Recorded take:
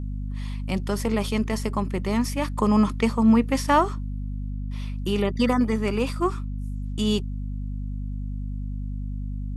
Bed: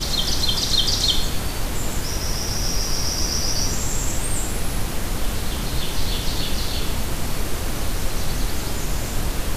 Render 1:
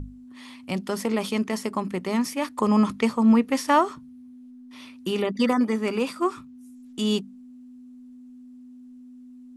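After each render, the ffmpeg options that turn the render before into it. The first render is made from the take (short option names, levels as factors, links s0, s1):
-af "bandreject=f=50:t=h:w=6,bandreject=f=100:t=h:w=6,bandreject=f=150:t=h:w=6,bandreject=f=200:t=h:w=6"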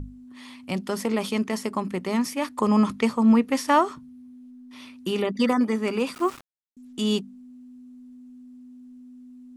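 -filter_complex "[0:a]asettb=1/sr,asplit=3[s0][s1][s2];[s0]atrim=end=6.144[s3];[s1]atrim=start=6.14:end=6.77,asetpts=PTS-STARTPTS,afade=t=in:d=0.004:c=qsin,afade=t=out:st=0.626:d=0.004:c=qsin,aeval=exprs='val(0)*gte(abs(val(0)),0.0141)':c=same[s4];[s2]atrim=start=6.766[s5];[s3][s4]acrossfade=d=0.004:c1=hsin:c2=qsin[s6];[s6][s5]acrossfade=d=0.004:c1=qsin:c2=hsin"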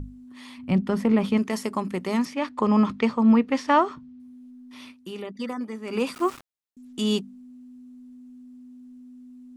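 -filter_complex "[0:a]asplit=3[s0][s1][s2];[s0]afade=t=out:st=0.57:d=0.02[s3];[s1]bass=f=250:g=11,treble=f=4000:g=-14,afade=t=in:st=0.57:d=0.02,afade=t=out:st=1.37:d=0.02[s4];[s2]afade=t=in:st=1.37:d=0.02[s5];[s3][s4][s5]amix=inputs=3:normalize=0,asettb=1/sr,asplit=3[s6][s7][s8];[s6]atrim=end=2.254[s9];[s7]atrim=start=2.25:end=4.2,asetpts=PTS-STARTPTS,afade=t=in:d=0.004:c=qsin,afade=t=out:st=1.946:d=0.004:c=qsin,lowpass=4200[s10];[s8]atrim=start=4.196[s11];[s9][s10]acrossfade=d=0.004:c1=hsin:c2=qsin[s12];[s12][s11]acrossfade=d=0.004:c1=qsin:c2=hsin,asplit=3[s13][s14][s15];[s13]atrim=end=5.15,asetpts=PTS-STARTPTS,afade=t=out:st=4.91:d=0.24:c=exp:silence=0.316228[s16];[s14]atrim=start=5.15:end=5.69,asetpts=PTS-STARTPTS,volume=0.316[s17];[s15]atrim=start=5.69,asetpts=PTS-STARTPTS,afade=t=in:d=0.24:c=exp:silence=0.316228[s18];[s16][s17][s18]concat=n=3:v=0:a=1"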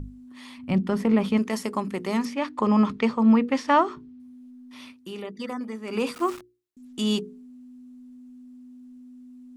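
-af "bandreject=f=60:t=h:w=6,bandreject=f=120:t=h:w=6,bandreject=f=180:t=h:w=6,bandreject=f=240:t=h:w=6,bandreject=f=300:t=h:w=6,bandreject=f=360:t=h:w=6,bandreject=f=420:t=h:w=6,bandreject=f=480:t=h:w=6"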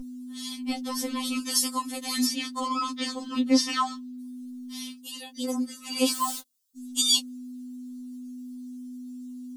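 -af "aexciter=amount=7.3:drive=3:freq=3200,afftfilt=real='re*3.46*eq(mod(b,12),0)':imag='im*3.46*eq(mod(b,12),0)':win_size=2048:overlap=0.75"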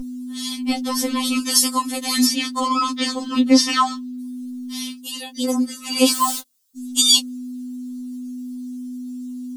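-af "volume=2.66,alimiter=limit=0.708:level=0:latency=1"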